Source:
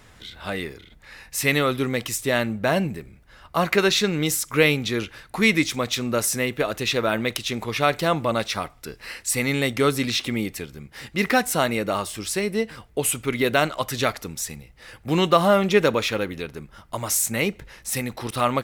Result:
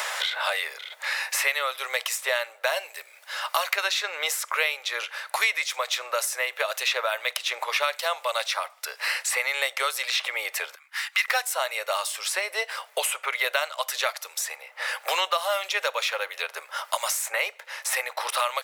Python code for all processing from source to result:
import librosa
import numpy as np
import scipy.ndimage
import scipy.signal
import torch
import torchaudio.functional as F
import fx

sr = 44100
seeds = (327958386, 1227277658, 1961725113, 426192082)

y = fx.chain(x, sr, fx.highpass(hz=1100.0, slope=24),
    fx.upward_expand(threshold_db=-50.0, expansion=1.5), at=(10.75, 11.28))
y = scipy.signal.sosfilt(scipy.signal.butter(8, 570.0, 'highpass', fs=sr, output='sos'), y)
y = fx.notch(y, sr, hz=720.0, q=12.0)
y = fx.band_squash(y, sr, depth_pct=100)
y = y * 10.0 ** (-1.5 / 20.0)